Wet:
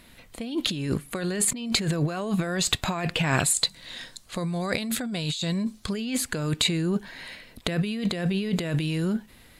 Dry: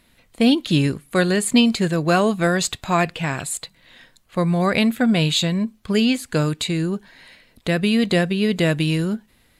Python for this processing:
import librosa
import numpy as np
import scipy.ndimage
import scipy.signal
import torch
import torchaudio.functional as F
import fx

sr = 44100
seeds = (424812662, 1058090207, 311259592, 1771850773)

y = fx.band_shelf(x, sr, hz=6100.0, db=8.0, octaves=1.7, at=(3.53, 5.92), fade=0.02)
y = fx.over_compress(y, sr, threshold_db=-26.0, ratio=-1.0)
y = y * 10.0 ** (-1.0 / 20.0)